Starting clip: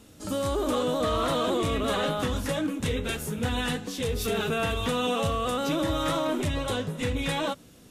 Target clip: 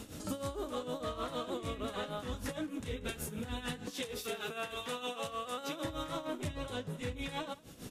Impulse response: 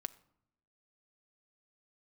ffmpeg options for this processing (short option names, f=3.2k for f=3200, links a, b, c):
-filter_complex "[0:a]asettb=1/sr,asplit=3[a][b][c];[a]atrim=end=3.904[d];[b]atrim=start=3.9:end=5.85,asetpts=PTS-STARTPTS,afade=t=in:d=0.004:c=qsin,afade=t=out:st=1.946:d=0.004:c=qsin,highpass=f=540:p=1[e];[c]atrim=start=5.846[f];[d][e]acrossfade=d=0.004:c1=hsin:c2=qsin[g];[g][f]acrossfade=d=0.004:c1=qsin:c2=hsin,acompressor=threshold=-43dB:ratio=6,tremolo=f=6.5:d=0.71,aecho=1:1:185:0.0708,volume=8dB"